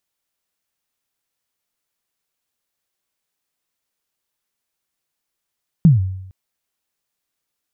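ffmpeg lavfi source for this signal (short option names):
-f lavfi -i "aevalsrc='0.631*pow(10,-3*t/0.82)*sin(2*PI*(180*0.149/log(94/180)*(exp(log(94/180)*min(t,0.149)/0.149)-1)+94*max(t-0.149,0)))':d=0.46:s=44100"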